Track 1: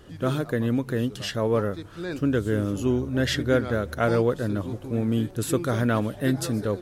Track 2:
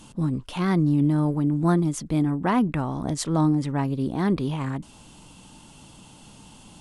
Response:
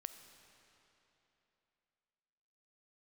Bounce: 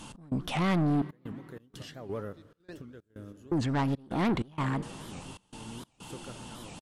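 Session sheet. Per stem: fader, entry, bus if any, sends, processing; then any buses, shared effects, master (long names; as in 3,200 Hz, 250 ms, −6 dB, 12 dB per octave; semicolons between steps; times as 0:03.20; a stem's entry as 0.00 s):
−9.5 dB, 0.60 s, send −4.5 dB, downward compressor 2 to 1, threshold −29 dBFS, peak gain reduction 7.5 dB; square-wave tremolo 2 Hz, depth 60%, duty 45%; automatic ducking −16 dB, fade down 1.30 s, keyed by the second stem
−2.5 dB, 0.00 s, muted 0:01.02–0:03.52, send −3.5 dB, parametric band 1,400 Hz +5 dB 2.9 octaves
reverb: on, RT60 3.2 s, pre-delay 5 ms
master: soft clipping −23 dBFS, distortion −8 dB; gate pattern "x.xxxxx.x" 95 BPM −24 dB; wow of a warped record 78 rpm, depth 250 cents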